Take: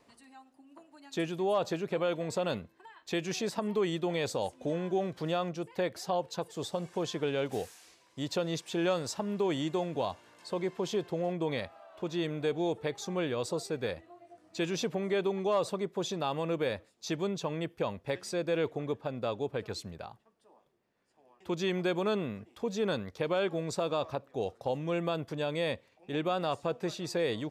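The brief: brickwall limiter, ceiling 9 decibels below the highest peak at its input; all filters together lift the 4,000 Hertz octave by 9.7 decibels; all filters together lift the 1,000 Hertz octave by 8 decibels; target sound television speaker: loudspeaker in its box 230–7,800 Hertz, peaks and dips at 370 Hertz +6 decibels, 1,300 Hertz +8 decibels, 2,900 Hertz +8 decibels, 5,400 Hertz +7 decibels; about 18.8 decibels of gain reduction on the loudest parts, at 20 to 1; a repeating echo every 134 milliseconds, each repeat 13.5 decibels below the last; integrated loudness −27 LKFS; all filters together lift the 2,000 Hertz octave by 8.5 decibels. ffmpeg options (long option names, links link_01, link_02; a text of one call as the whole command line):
ffmpeg -i in.wav -af "equalizer=frequency=1000:width_type=o:gain=6,equalizer=frequency=2000:width_type=o:gain=3.5,equalizer=frequency=4000:width_type=o:gain=5.5,acompressor=threshold=-41dB:ratio=20,alimiter=level_in=11dB:limit=-24dB:level=0:latency=1,volume=-11dB,highpass=frequency=230:width=0.5412,highpass=frequency=230:width=1.3066,equalizer=frequency=370:width_type=q:width=4:gain=6,equalizer=frequency=1300:width_type=q:width=4:gain=8,equalizer=frequency=2900:width_type=q:width=4:gain=8,equalizer=frequency=5400:width_type=q:width=4:gain=7,lowpass=frequency=7800:width=0.5412,lowpass=frequency=7800:width=1.3066,aecho=1:1:134|268:0.211|0.0444,volume=17.5dB" out.wav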